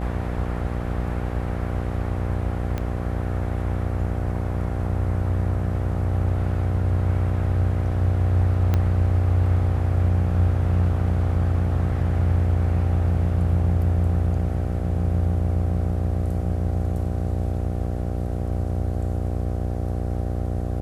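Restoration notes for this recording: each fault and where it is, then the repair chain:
buzz 60 Hz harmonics 13 -27 dBFS
2.78 s: pop -15 dBFS
8.74 s: pop -11 dBFS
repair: de-click; de-hum 60 Hz, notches 13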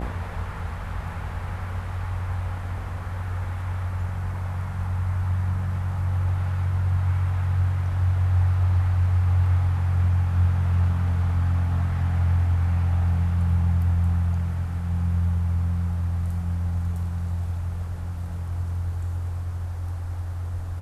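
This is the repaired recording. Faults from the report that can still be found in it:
2.78 s: pop
8.74 s: pop

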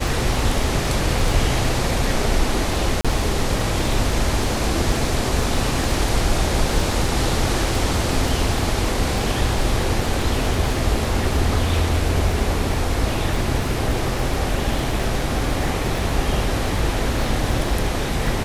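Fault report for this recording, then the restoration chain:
crackle 47 per s -26 dBFS
3.01–3.05 s: dropout 36 ms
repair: de-click; interpolate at 3.01 s, 36 ms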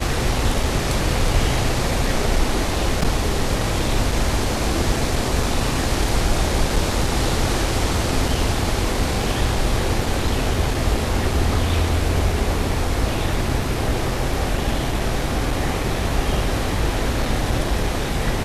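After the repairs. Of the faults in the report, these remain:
nothing left

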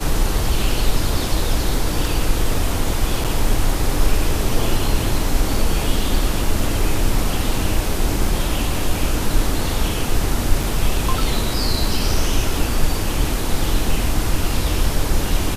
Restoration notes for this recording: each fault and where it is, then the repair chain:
3.24–3.25 s: dropout 6.9 ms
10.63 s: dropout 3.7 ms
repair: interpolate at 3.24 s, 6.9 ms; interpolate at 10.63 s, 3.7 ms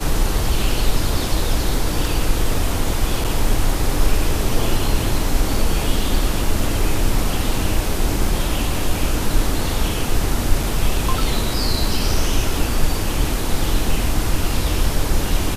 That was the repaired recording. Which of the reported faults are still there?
nothing left

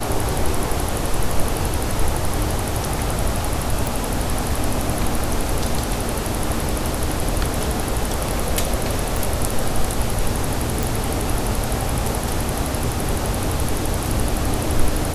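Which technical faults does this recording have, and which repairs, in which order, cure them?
3.87 s: pop
9.17 s: pop
10.83 s: pop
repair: de-click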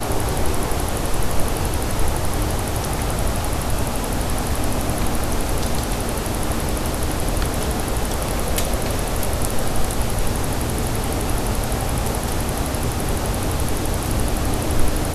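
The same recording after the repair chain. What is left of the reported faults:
9.17 s: pop

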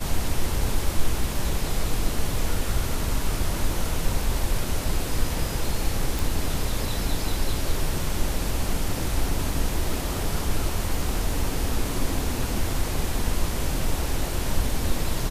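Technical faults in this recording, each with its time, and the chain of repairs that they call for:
6.19 s: pop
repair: de-click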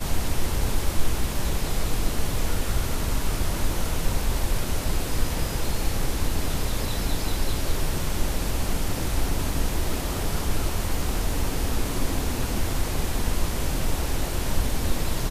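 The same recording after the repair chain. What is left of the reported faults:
nothing left

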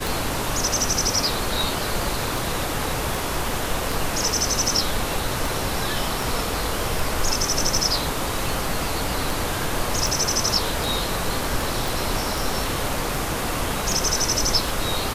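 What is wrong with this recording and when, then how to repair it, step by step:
tick 78 rpm
11.88 s: pop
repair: de-click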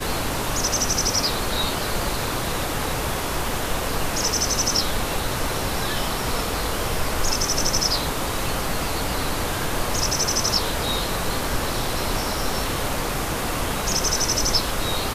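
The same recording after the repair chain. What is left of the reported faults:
nothing left

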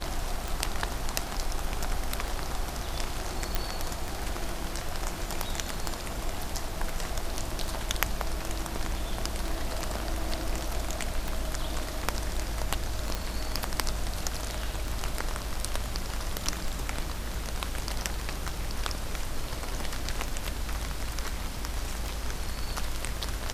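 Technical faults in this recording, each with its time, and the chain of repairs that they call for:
tick 33 1/3 rpm
3.55 s: pop
13.15 s: pop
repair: de-click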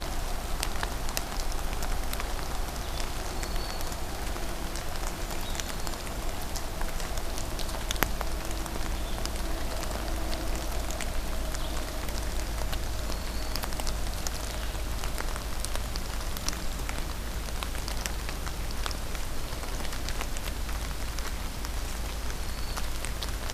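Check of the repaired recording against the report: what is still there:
nothing left

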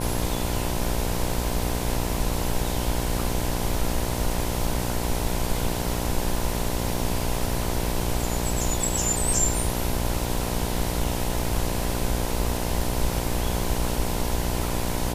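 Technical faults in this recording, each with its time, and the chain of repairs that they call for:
buzz 60 Hz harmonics 17 -29 dBFS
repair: de-hum 60 Hz, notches 17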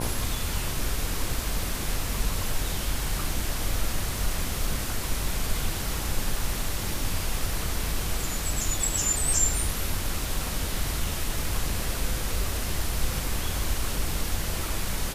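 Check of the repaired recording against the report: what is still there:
nothing left

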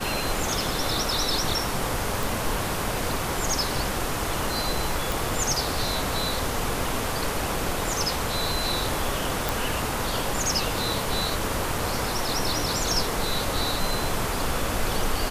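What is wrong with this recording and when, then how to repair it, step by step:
2.23 s: pop
5.12 s: pop
9.49 s: pop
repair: de-click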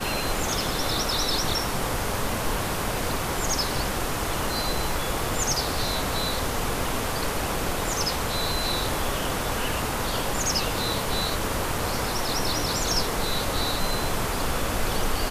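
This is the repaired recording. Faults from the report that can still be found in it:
nothing left

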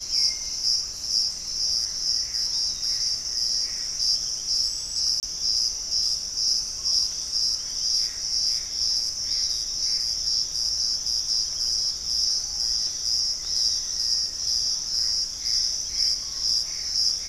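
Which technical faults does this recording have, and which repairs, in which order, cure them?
5.20–5.23 s: dropout 28 ms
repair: interpolate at 5.20 s, 28 ms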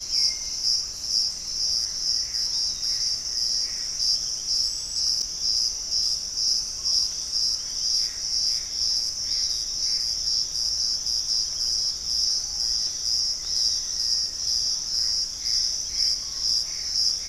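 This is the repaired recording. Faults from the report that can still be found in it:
nothing left

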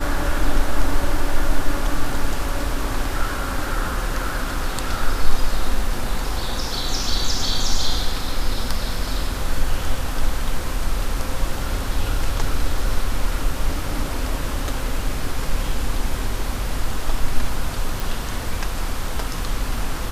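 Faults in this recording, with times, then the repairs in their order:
18.00 s: pop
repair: de-click

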